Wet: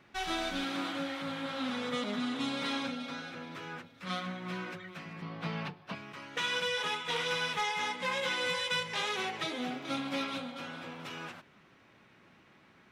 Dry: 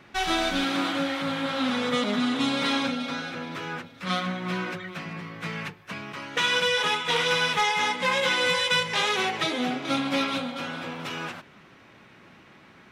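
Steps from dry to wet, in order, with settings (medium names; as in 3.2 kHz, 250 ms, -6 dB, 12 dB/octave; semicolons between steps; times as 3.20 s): 5.22–5.95 s: FFT filter 100 Hz 0 dB, 150 Hz +8 dB, 470 Hz +5 dB, 730 Hz +11 dB, 2 kHz -1 dB, 2.9 kHz +4 dB, 4.7 kHz +5 dB, 7 kHz -7 dB; 9.46–10.25 s: crackle 250 per s -47 dBFS; trim -9 dB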